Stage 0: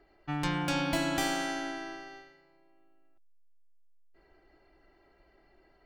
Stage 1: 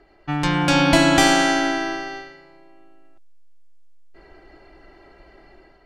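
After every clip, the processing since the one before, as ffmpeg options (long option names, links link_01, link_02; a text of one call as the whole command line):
ffmpeg -i in.wav -af "lowpass=9500,dynaudnorm=framelen=460:gausssize=3:maxgain=6.5dB,volume=9dB" out.wav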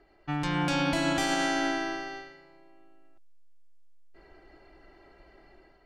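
ffmpeg -i in.wav -af "alimiter=limit=-10.5dB:level=0:latency=1:release=165,volume=-7dB" out.wav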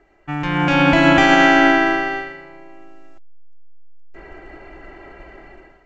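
ffmpeg -i in.wav -af "highshelf=frequency=3400:width_type=q:width=1.5:gain=-10,dynaudnorm=framelen=290:gausssize=5:maxgain=11dB,volume=4.5dB" -ar 16000 -c:a pcm_mulaw out.wav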